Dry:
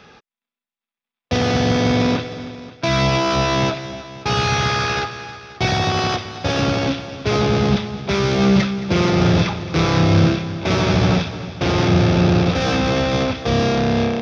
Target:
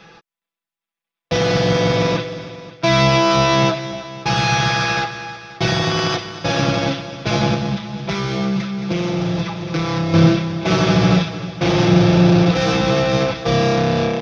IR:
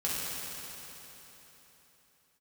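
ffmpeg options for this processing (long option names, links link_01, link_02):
-filter_complex "[0:a]aecho=1:1:6:0.88,asettb=1/sr,asplit=3[link_01][link_02][link_03];[link_01]atrim=end=7.544[link_04];[link_02]atrim=start=7.54:end=10.14,asetpts=PTS-STARTPTS,afade=type=in:duration=0.004:curve=qsin,afade=type=out:start_time=2.596:duration=0.004:curve=qsin,acompressor=threshold=-19dB:ratio=3[link_05];[link_03]atrim=start=10.136[link_06];[link_04][link_05]acrossfade=duration=0.004:curve1=hsin:curve2=qsin[link_07];[link_07][link_06]acrossfade=duration=0.004:curve1=qsin:curve2=hsin,volume=-1dB"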